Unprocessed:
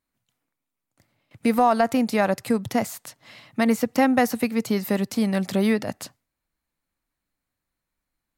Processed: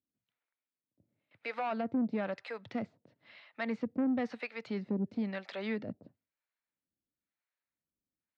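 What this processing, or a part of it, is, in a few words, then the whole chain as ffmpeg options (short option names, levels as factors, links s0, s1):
guitar amplifier with harmonic tremolo: -filter_complex "[0:a]acrossover=split=560[s0][s1];[s0]aeval=exprs='val(0)*(1-1/2+1/2*cos(2*PI*1*n/s))':c=same[s2];[s1]aeval=exprs='val(0)*(1-1/2-1/2*cos(2*PI*1*n/s))':c=same[s3];[s2][s3]amix=inputs=2:normalize=0,asoftclip=type=tanh:threshold=0.1,highpass=100,equalizer=f=130:t=q:w=4:g=-4,equalizer=f=780:t=q:w=4:g=-5,equalizer=f=1100:t=q:w=4:g=-5,equalizer=f=3100:t=q:w=4:g=-3,lowpass=f=3700:w=0.5412,lowpass=f=3700:w=1.3066,volume=0.562"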